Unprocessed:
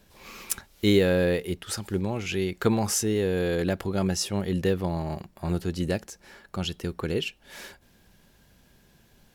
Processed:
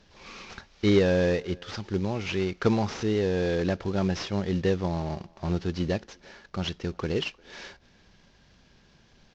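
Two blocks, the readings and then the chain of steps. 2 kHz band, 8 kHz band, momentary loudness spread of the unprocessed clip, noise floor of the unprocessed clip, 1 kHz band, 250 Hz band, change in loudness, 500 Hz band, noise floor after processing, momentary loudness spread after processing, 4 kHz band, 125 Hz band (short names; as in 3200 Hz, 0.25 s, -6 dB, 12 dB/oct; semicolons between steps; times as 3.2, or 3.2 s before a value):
-1.0 dB, -14.0 dB, 17 LU, -60 dBFS, 0.0 dB, -0.5 dB, -0.5 dB, -0.5 dB, -60 dBFS, 20 LU, -2.5 dB, 0.0 dB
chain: CVSD 32 kbps; speakerphone echo 0.35 s, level -26 dB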